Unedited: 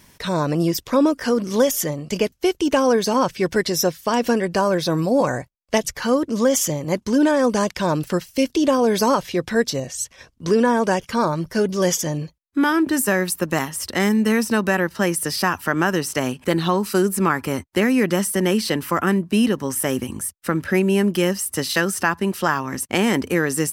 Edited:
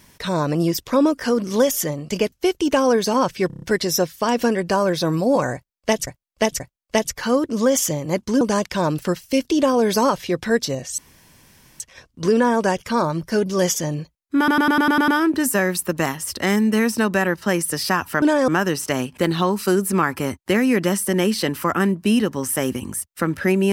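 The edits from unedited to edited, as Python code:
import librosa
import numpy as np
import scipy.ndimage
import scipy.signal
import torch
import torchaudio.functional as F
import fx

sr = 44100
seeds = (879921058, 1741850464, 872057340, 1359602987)

y = fx.edit(x, sr, fx.stutter(start_s=3.47, slice_s=0.03, count=6),
    fx.repeat(start_s=5.39, length_s=0.53, count=3),
    fx.move(start_s=7.2, length_s=0.26, to_s=15.75),
    fx.insert_room_tone(at_s=10.03, length_s=0.82),
    fx.stutter(start_s=12.61, slice_s=0.1, count=8), tone=tone)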